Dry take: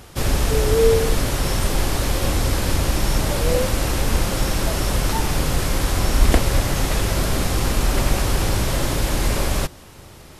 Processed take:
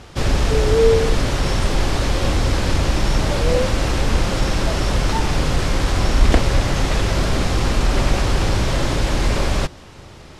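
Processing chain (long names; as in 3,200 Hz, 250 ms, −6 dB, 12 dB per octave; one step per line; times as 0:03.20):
low-pass filter 6,000 Hz 12 dB per octave
in parallel at −9 dB: soft clipping −14.5 dBFS, distortion −13 dB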